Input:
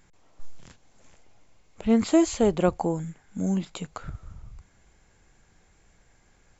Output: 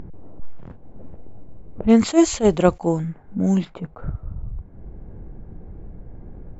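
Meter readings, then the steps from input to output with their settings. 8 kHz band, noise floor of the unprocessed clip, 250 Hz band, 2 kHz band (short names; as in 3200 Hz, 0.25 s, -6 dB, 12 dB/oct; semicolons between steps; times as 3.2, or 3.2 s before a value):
n/a, -62 dBFS, +6.0 dB, +5.5 dB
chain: low-pass opened by the level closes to 360 Hz, open at -19.5 dBFS; upward compressor, threshold -27 dBFS; attack slew limiter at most 310 dB/s; gain +7 dB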